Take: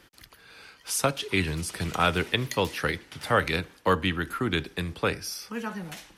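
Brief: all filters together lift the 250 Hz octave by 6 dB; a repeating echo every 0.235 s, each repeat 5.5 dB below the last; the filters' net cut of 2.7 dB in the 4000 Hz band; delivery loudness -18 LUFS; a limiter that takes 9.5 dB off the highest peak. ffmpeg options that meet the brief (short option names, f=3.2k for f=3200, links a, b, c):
-af "equalizer=f=250:t=o:g=8,equalizer=f=4k:t=o:g=-3.5,alimiter=limit=-17.5dB:level=0:latency=1,aecho=1:1:235|470|705|940|1175|1410|1645:0.531|0.281|0.149|0.079|0.0419|0.0222|0.0118,volume=10.5dB"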